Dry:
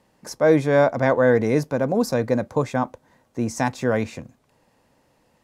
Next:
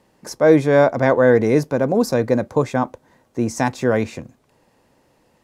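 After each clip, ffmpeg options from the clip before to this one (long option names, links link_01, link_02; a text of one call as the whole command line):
ffmpeg -i in.wav -af "equalizer=frequency=370:width_type=o:width=0.52:gain=4,volume=2.5dB" out.wav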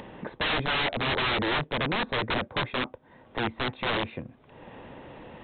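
ffmpeg -i in.wav -af "acompressor=mode=upward:threshold=-20dB:ratio=2.5,aresample=8000,aeval=exprs='(mod(5.62*val(0)+1,2)-1)/5.62':channel_layout=same,aresample=44100,volume=-6.5dB" out.wav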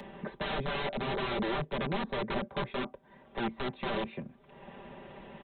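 ffmpeg -i in.wav -filter_complex "[0:a]aecho=1:1:5.1:0.82,acrossover=split=260|300|970[link_01][link_02][link_03][link_04];[link_04]alimiter=level_in=2dB:limit=-24dB:level=0:latency=1:release=153,volume=-2dB[link_05];[link_01][link_02][link_03][link_05]amix=inputs=4:normalize=0,volume=-5dB" out.wav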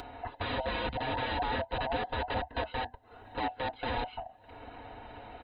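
ffmpeg -i in.wav -af "afftfilt=real='real(if(lt(b,1008),b+24*(1-2*mod(floor(b/24),2)),b),0)':imag='imag(if(lt(b,1008),b+24*(1-2*mod(floor(b/24),2)),b),0)':win_size=2048:overlap=0.75,acompressor=mode=upward:threshold=-42dB:ratio=2.5" out.wav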